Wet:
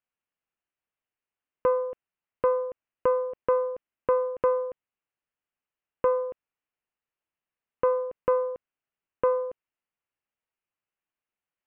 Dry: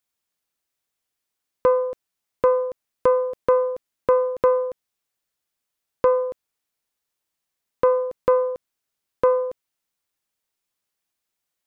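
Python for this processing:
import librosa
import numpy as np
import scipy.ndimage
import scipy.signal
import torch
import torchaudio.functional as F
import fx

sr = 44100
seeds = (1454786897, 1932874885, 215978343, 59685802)

y = scipy.signal.sosfilt(scipy.signal.ellip(4, 1.0, 40, 2900.0, 'lowpass', fs=sr, output='sos'), x)
y = F.gain(torch.from_numpy(y), -5.0).numpy()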